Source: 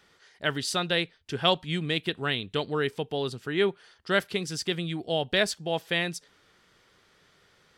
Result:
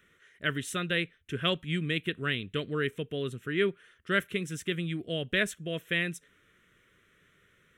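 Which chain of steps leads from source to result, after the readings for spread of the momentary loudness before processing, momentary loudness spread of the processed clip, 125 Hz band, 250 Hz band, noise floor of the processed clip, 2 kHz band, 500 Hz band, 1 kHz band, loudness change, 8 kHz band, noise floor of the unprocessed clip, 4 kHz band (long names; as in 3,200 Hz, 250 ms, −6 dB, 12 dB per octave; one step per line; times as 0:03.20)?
6 LU, 6 LU, −0.5 dB, −1.5 dB, −66 dBFS, −0.5 dB, −4.5 dB, −7.5 dB, −3.0 dB, −5.0 dB, −63 dBFS, −5.5 dB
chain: phaser with its sweep stopped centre 2,000 Hz, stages 4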